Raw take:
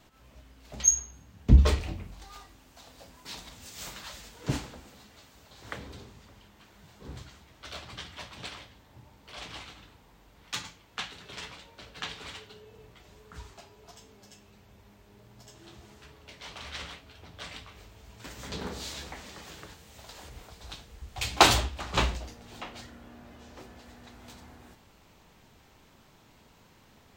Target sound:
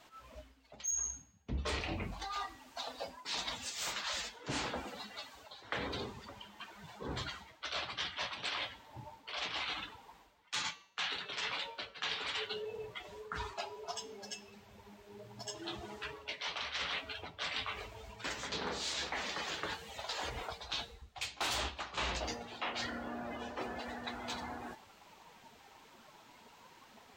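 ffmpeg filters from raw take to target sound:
ffmpeg -i in.wav -filter_complex "[0:a]asplit=2[link_01][link_02];[link_02]highpass=frequency=720:poles=1,volume=16dB,asoftclip=type=tanh:threshold=-2.5dB[link_03];[link_01][link_03]amix=inputs=2:normalize=0,lowpass=frequency=7600:poles=1,volume=-6dB,afftdn=noise_reduction=15:noise_floor=-43,areverse,acompressor=threshold=-42dB:ratio=8,areverse,bandreject=frequency=192.5:width_type=h:width=4,bandreject=frequency=385:width_type=h:width=4,bandreject=frequency=577.5:width_type=h:width=4,bandreject=frequency=770:width_type=h:width=4,bandreject=frequency=962.5:width_type=h:width=4,bandreject=frequency=1155:width_type=h:width=4,bandreject=frequency=1347.5:width_type=h:width=4,bandreject=frequency=1540:width_type=h:width=4,bandreject=frequency=1732.5:width_type=h:width=4,bandreject=frequency=1925:width_type=h:width=4,bandreject=frequency=2117.5:width_type=h:width=4,bandreject=frequency=2310:width_type=h:width=4,bandreject=frequency=2502.5:width_type=h:width=4,bandreject=frequency=2695:width_type=h:width=4,bandreject=frequency=2887.5:width_type=h:width=4,bandreject=frequency=3080:width_type=h:width=4,bandreject=frequency=3272.5:width_type=h:width=4,bandreject=frequency=3465:width_type=h:width=4,bandreject=frequency=3657.5:width_type=h:width=4,bandreject=frequency=3850:width_type=h:width=4,bandreject=frequency=4042.5:width_type=h:width=4,bandreject=frequency=4235:width_type=h:width=4,bandreject=frequency=4427.5:width_type=h:width=4,bandreject=frequency=4620:width_type=h:width=4,bandreject=frequency=4812.5:width_type=h:width=4,bandreject=frequency=5005:width_type=h:width=4,bandreject=frequency=5197.5:width_type=h:width=4,bandreject=frequency=5390:width_type=h:width=4,bandreject=frequency=5582.5:width_type=h:width=4,bandreject=frequency=5775:width_type=h:width=4,bandreject=frequency=5967.5:width_type=h:width=4,bandreject=frequency=6160:width_type=h:width=4,bandreject=frequency=6352.5:width_type=h:width=4,bandreject=frequency=6545:width_type=h:width=4,bandreject=frequency=6737.5:width_type=h:width=4,volume=6dB" out.wav

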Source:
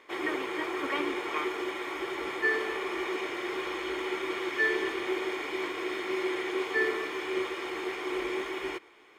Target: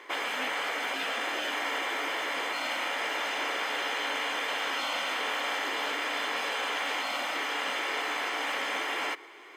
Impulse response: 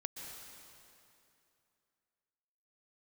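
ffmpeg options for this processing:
-af "highpass=410,afftfilt=real='re*lt(hypot(re,im),0.0447)':imag='im*lt(hypot(re,im),0.0447)':win_size=1024:overlap=0.75,asetrate=42336,aresample=44100,volume=8.5dB"

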